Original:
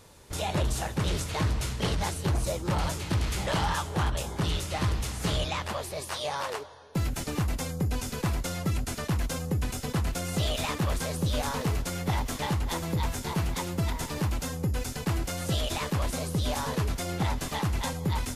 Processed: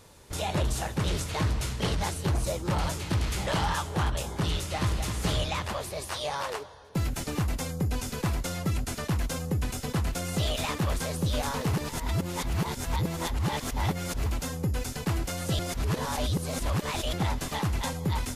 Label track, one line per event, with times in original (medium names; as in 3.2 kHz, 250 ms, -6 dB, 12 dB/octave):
4.580000	5.070000	echo throw 260 ms, feedback 60%, level -7.5 dB
11.730000	14.260000	reverse
15.590000	17.130000	reverse